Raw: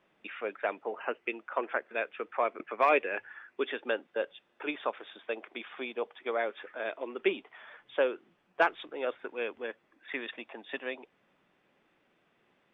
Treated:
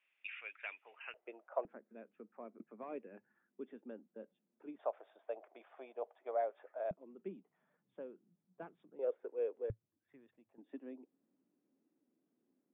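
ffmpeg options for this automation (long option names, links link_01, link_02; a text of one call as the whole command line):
ffmpeg -i in.wav -af "asetnsamples=nb_out_samples=441:pad=0,asendcmd='1.14 bandpass f 640;1.65 bandpass f 210;4.79 bandpass f 650;6.91 bandpass f 180;8.99 bandpass f 470;9.7 bandpass f 110;10.58 bandpass f 270',bandpass=frequency=2500:width_type=q:width=4.4:csg=0" out.wav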